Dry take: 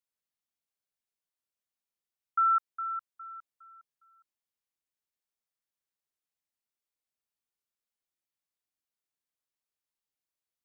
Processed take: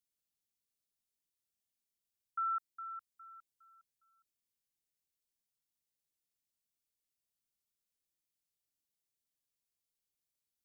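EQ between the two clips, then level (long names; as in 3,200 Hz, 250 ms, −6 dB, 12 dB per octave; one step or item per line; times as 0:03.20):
parametric band 1,100 Hz −14.5 dB 2.2 octaves
+3.0 dB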